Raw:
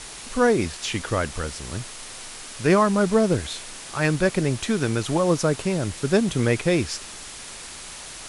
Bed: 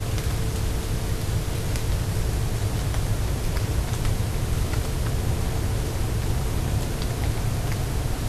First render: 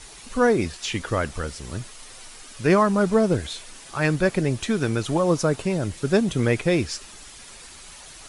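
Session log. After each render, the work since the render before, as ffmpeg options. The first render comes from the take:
-af "afftdn=nr=8:nf=-39"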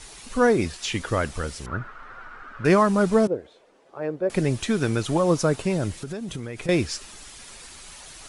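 -filter_complex "[0:a]asettb=1/sr,asplit=3[a][b][c];[a]atrim=end=1.664[d];[b]atrim=start=1.66:end=2.65,asetpts=PTS-STARTPTS,afade=t=in:d=0.004:c=qsin,afade=t=out:st=0.986:d=0.004:c=qsin,lowpass=f=1.4k:t=q:w=6.6[e];[c]atrim=start=2.646[f];[d][e]acrossfade=d=0.004:c1=hsin:c2=qsin[g];[g][f]acrossfade=d=0.004:c1=qsin:c2=hsin,asettb=1/sr,asplit=3[h][i][j];[h]atrim=end=3.274[k];[i]atrim=start=3.27:end=4.3,asetpts=PTS-STARTPTS,afade=t=in:d=0.004:c=qsin,afade=t=out:st=1.026:d=0.004:c=qsin,bandpass=f=490:t=q:w=2.1[l];[j]atrim=start=4.296[m];[k][l]acrossfade=d=0.004:c1=hsin:c2=qsin[n];[n][m]acrossfade=d=0.004:c1=qsin:c2=hsin,asettb=1/sr,asplit=3[o][p][q];[o]atrim=end=5.934[r];[p]atrim=start=5.93:end=6.69,asetpts=PTS-STARTPTS,afade=t=in:d=0.004:c=qsin,afade=t=out:st=0.756:d=0.004:c=qsin,acompressor=threshold=-28dB:ratio=16:attack=3.2:release=140:knee=1:detection=peak[s];[q]atrim=start=6.686[t];[r][s]acrossfade=d=0.004:c1=hsin:c2=qsin[u];[u][t]acrossfade=d=0.004:c1=qsin:c2=hsin"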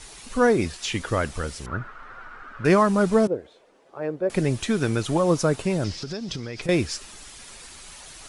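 -filter_complex "[0:a]asettb=1/sr,asplit=3[a][b][c];[a]atrim=end=5.844[d];[b]atrim=start=5.84:end=6.62,asetpts=PTS-STARTPTS,afade=t=in:d=0.004:c=qsin,afade=t=out:st=0.776:d=0.004:c=qsin,lowpass=f=5.1k:t=q:w=5.7[e];[c]atrim=start=6.616[f];[d][e]acrossfade=d=0.004:c1=hsin:c2=qsin[g];[g][f]acrossfade=d=0.004:c1=qsin:c2=hsin"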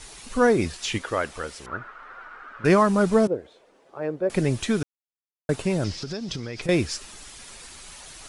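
-filter_complex "[0:a]asettb=1/sr,asplit=3[a][b][c];[a]atrim=end=0.984[d];[b]atrim=start=0.98:end=2.64,asetpts=PTS-STARTPTS,afade=t=in:d=0.004:c=qsin,afade=t=out:st=1.656:d=0.004:c=qsin,bass=f=250:g=-12,treble=f=4k:g=-4[e];[c]atrim=start=2.636[f];[d][e]acrossfade=d=0.004:c1=hsin:c2=qsin[g];[g][f]acrossfade=d=0.004:c1=qsin:c2=hsin,asplit=3[h][i][j];[h]atrim=end=4.83,asetpts=PTS-STARTPTS,afade=t=out:st=4.826:d=0.004:c=hsin[k];[i]atrim=start=4.83:end=5.49,asetpts=PTS-STARTPTS,volume=0[l];[j]atrim=start=5.49,asetpts=PTS-STARTPTS,afade=t=in:d=0.004:c=hsin[m];[k][l][m]concat=n=3:v=0:a=1"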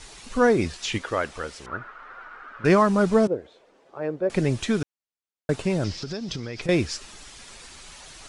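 -af "lowpass=8k"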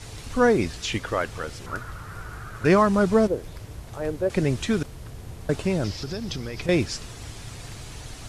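-filter_complex "[1:a]volume=-14.5dB[a];[0:a][a]amix=inputs=2:normalize=0"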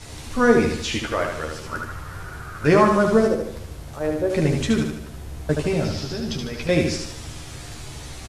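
-filter_complex "[0:a]asplit=2[a][b];[b]adelay=13,volume=-4dB[c];[a][c]amix=inputs=2:normalize=0,aecho=1:1:75|150|225|300|375|450:0.596|0.286|0.137|0.0659|0.0316|0.0152"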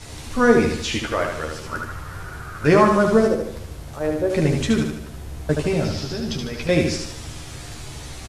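-af "volume=1dB"

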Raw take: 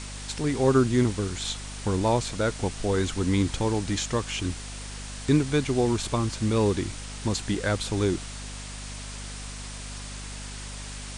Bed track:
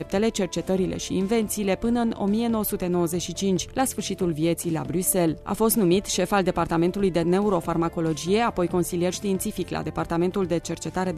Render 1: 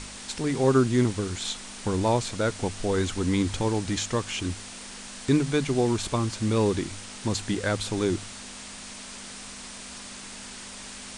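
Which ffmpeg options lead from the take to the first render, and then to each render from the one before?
-af "bandreject=f=50:t=h:w=4,bandreject=f=100:t=h:w=4,bandreject=f=150:t=h:w=4"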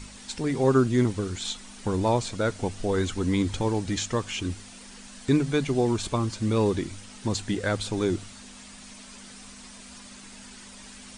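-af "afftdn=nr=8:nf=-41"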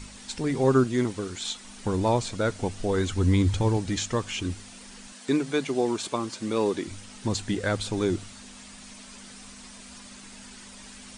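-filter_complex "[0:a]asettb=1/sr,asplit=3[a][b][c];[a]atrim=end=0.844[d];[b]atrim=start=0.84:end=1.65,asetpts=PTS-STARTPTS,afade=t=in:d=0.004:c=qsin,afade=t=out:st=0.806:d=0.004:c=qsin,lowshelf=f=140:g=-11.5[e];[c]atrim=start=1.646[f];[d][e]acrossfade=d=0.004:c1=hsin:c2=qsin[g];[g][f]acrossfade=d=0.004:c1=qsin:c2=hsin,asettb=1/sr,asplit=3[h][i][j];[h]atrim=end=3.094[k];[i]atrim=start=3.09:end=3.77,asetpts=PTS-STARTPTS,afade=t=in:d=0.004:c=qsin,afade=t=out:st=0.676:d=0.004:c=qsin,equalizer=f=90:t=o:w=0.77:g=9.5[l];[j]atrim=start=3.766[m];[k][l]acrossfade=d=0.004:c1=hsin:c2=qsin[n];[n][m]acrossfade=d=0.004:c1=qsin:c2=hsin,asettb=1/sr,asplit=3[o][p][q];[o]atrim=end=5.124[r];[p]atrim=start=5.12:end=6.87,asetpts=PTS-STARTPTS,afade=t=in:d=0.004:c=qsin,afade=t=out:st=1.746:d=0.004:c=qsin,highpass=250[s];[q]atrim=start=6.866[t];[r][s]acrossfade=d=0.004:c1=hsin:c2=qsin[u];[u][t]acrossfade=d=0.004:c1=qsin:c2=hsin"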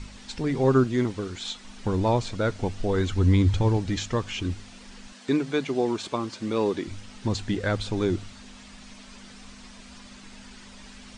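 -af "lowpass=5.5k,lowshelf=f=82:g=6.5"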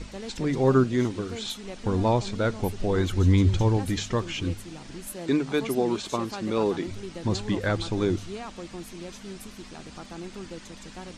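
-filter_complex "[1:a]volume=-16dB[a];[0:a][a]amix=inputs=2:normalize=0"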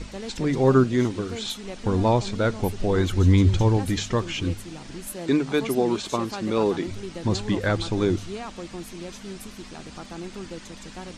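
-af "volume=2.5dB"

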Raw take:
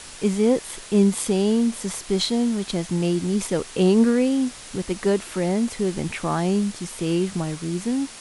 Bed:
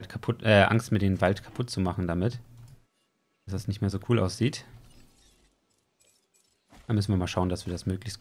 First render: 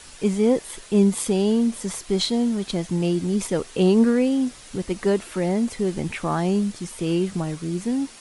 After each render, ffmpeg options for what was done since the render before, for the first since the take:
-af "afftdn=nr=6:nf=-41"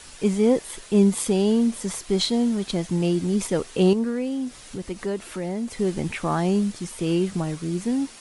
-filter_complex "[0:a]asettb=1/sr,asplit=3[a][b][c];[a]atrim=end=3.934[d];[b]atrim=start=3.93:end=5.77,asetpts=PTS-STARTPTS,afade=t=in:d=0.004:c=qsin,afade=t=out:st=1.836:d=0.004:c=qsin,acompressor=threshold=-35dB:ratio=1.5:attack=3.2:release=140:knee=1:detection=peak[e];[c]atrim=start=5.766[f];[d][e]acrossfade=d=0.004:c1=hsin:c2=qsin[g];[g][f]acrossfade=d=0.004:c1=qsin:c2=hsin"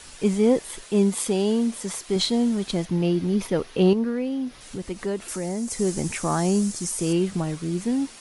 -filter_complex "[0:a]asettb=1/sr,asplit=3[a][b][c];[a]atrim=end=0.844[d];[b]atrim=start=0.84:end=2.16,asetpts=PTS-STARTPTS,afade=t=in:d=0.004:c=qsin,afade=t=out:st=1.316:d=0.004:c=qsin,lowshelf=f=150:g=-9[e];[c]atrim=start=2.156[f];[d][e]acrossfade=d=0.004:c1=hsin:c2=qsin[g];[g][f]acrossfade=d=0.004:c1=qsin:c2=hsin,asettb=1/sr,asplit=3[h][i][j];[h]atrim=end=2.854[k];[i]atrim=start=2.85:end=4.61,asetpts=PTS-STARTPTS,afade=t=in:d=0.004:c=qsin,afade=t=out:st=1.756:d=0.004:c=qsin,equalizer=f=7.9k:t=o:w=0.6:g=-14.5[l];[j]atrim=start=4.606[m];[k][l]acrossfade=d=0.004:c1=hsin:c2=qsin[n];[n][m]acrossfade=d=0.004:c1=qsin:c2=hsin,asettb=1/sr,asplit=3[o][p][q];[o]atrim=end=5.284[r];[p]atrim=start=5.28:end=7.13,asetpts=PTS-STARTPTS,afade=t=in:d=0.004:c=qsin,afade=t=out:st=1.846:d=0.004:c=qsin,highshelf=f=4.7k:t=q:w=1.5:g=9[s];[q]atrim=start=7.126[t];[r][s]acrossfade=d=0.004:c1=hsin:c2=qsin[u];[u][t]acrossfade=d=0.004:c1=qsin:c2=hsin"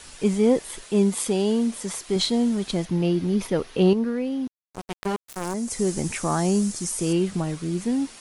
-filter_complex "[0:a]asettb=1/sr,asplit=3[a][b][c];[a]atrim=end=4.474[d];[b]atrim=start=4.47:end=5.54,asetpts=PTS-STARTPTS,afade=t=in:d=0.004:c=qsin,afade=t=out:st=1.066:d=0.004:c=qsin,acrusher=bits=3:mix=0:aa=0.5[e];[c]atrim=start=5.536[f];[d][e]acrossfade=d=0.004:c1=hsin:c2=qsin[g];[g][f]acrossfade=d=0.004:c1=qsin:c2=hsin"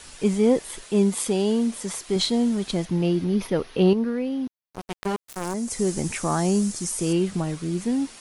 -filter_complex "[0:a]asettb=1/sr,asplit=3[a][b][c];[a]atrim=end=3.244[d];[b]atrim=start=3.24:end=4.81,asetpts=PTS-STARTPTS,afade=t=in:d=0.004:c=qsin,afade=t=out:st=1.566:d=0.004:c=qsin,equalizer=f=7.7k:t=o:w=0.36:g=-11.5[e];[c]atrim=start=4.806[f];[d][e]acrossfade=d=0.004:c1=hsin:c2=qsin[g];[g][f]acrossfade=d=0.004:c1=qsin:c2=hsin"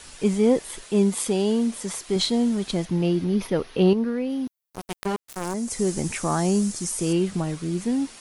-filter_complex "[0:a]asettb=1/sr,asplit=3[a][b][c];[a]atrim=end=4.294[d];[b]atrim=start=4.29:end=5.05,asetpts=PTS-STARTPTS,afade=t=in:d=0.004:c=qsin,afade=t=out:st=0.756:d=0.004:c=qsin,highshelf=f=7.6k:g=11.5[e];[c]atrim=start=5.046[f];[d][e]acrossfade=d=0.004:c1=hsin:c2=qsin[g];[g][f]acrossfade=d=0.004:c1=qsin:c2=hsin"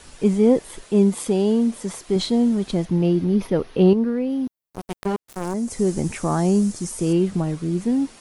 -af "tiltshelf=f=1.1k:g=4"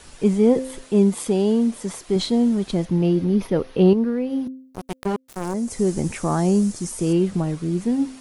-af "bandreject=f=261.1:t=h:w=4,bandreject=f=522.2:t=h:w=4"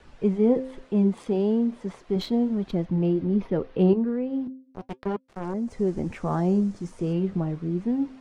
-filter_complex "[0:a]acrossover=split=700|800[a][b][c];[c]adynamicsmooth=sensitivity=1.5:basefreq=2.7k[d];[a][b][d]amix=inputs=3:normalize=0,flanger=delay=0.4:depth=8.1:regen=-73:speed=0.36:shape=triangular"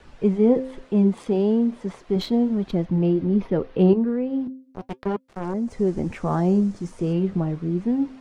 -af "volume=3dB"

